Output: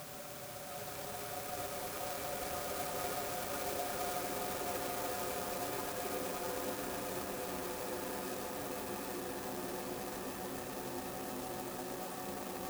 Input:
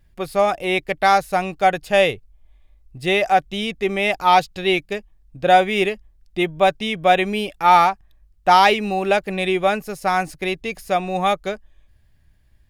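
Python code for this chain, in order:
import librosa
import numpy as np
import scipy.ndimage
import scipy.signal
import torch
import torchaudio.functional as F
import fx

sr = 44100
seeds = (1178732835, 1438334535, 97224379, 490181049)

p1 = np.where(x < 0.0, 10.0 ** (-7.0 / 20.0) * x, x)
p2 = librosa.effects.preemphasis(p1, coef=0.9, zi=[0.0])
p3 = fx.schmitt(p2, sr, flips_db=-36.0)
p4 = p2 + (p3 * 10.0 ** (-5.0 / 20.0))
p5 = scipy.signal.sosfilt(scipy.signal.butter(2, 110.0, 'highpass', fs=sr, output='sos'), p4)
p6 = fx.peak_eq(p5, sr, hz=1400.0, db=3.5, octaves=2.4)
p7 = p6 + fx.echo_single(p6, sr, ms=82, db=-7.0, dry=0)
p8 = fx.paulstretch(p7, sr, seeds[0], factor=40.0, window_s=0.25, from_s=10.86)
p9 = fx.echo_pitch(p8, sr, ms=781, semitones=-6, count=3, db_per_echo=-3.0)
p10 = fx.clock_jitter(p9, sr, seeds[1], jitter_ms=0.089)
y = p10 * 10.0 ** (-8.0 / 20.0)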